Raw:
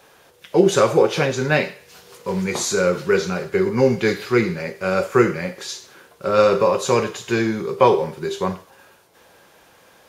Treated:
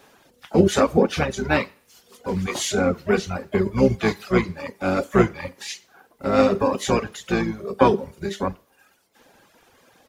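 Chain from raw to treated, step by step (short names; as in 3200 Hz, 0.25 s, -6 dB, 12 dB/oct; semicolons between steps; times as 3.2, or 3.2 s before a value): harmoniser -12 st -3 dB, +7 st -14 dB; reverb removal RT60 1.1 s; gain -3 dB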